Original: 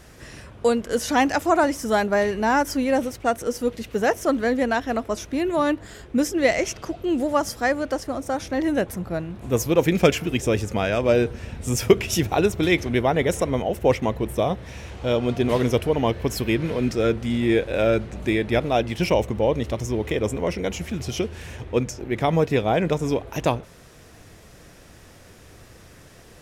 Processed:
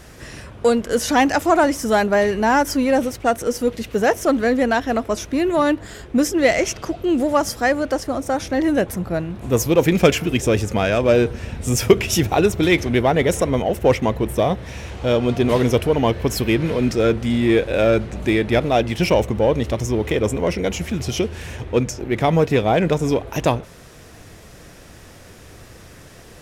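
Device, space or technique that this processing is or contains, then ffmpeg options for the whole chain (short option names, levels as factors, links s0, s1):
parallel distortion: -filter_complex "[0:a]asplit=2[s0][s1];[s1]asoftclip=type=hard:threshold=0.0841,volume=0.398[s2];[s0][s2]amix=inputs=2:normalize=0,volume=1.26"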